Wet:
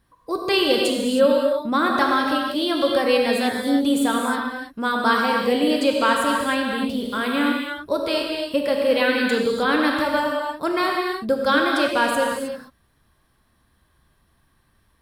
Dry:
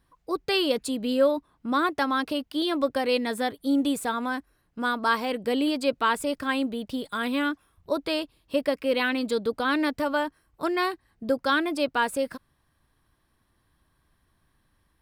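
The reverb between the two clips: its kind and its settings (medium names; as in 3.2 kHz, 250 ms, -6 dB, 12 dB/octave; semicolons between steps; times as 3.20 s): gated-style reverb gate 340 ms flat, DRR -0.5 dB; trim +3 dB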